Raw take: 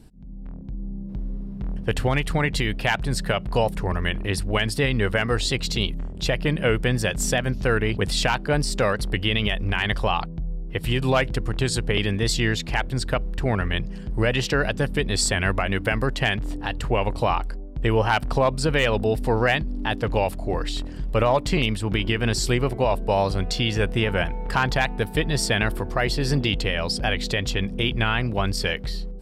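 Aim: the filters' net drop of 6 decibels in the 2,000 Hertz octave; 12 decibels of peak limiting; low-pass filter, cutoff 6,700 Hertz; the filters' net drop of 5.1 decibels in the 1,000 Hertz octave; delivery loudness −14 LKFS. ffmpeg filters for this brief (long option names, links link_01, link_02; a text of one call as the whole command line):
ffmpeg -i in.wav -af "lowpass=6700,equalizer=frequency=1000:width_type=o:gain=-5.5,equalizer=frequency=2000:width_type=o:gain=-6,volume=18dB,alimiter=limit=-4.5dB:level=0:latency=1" out.wav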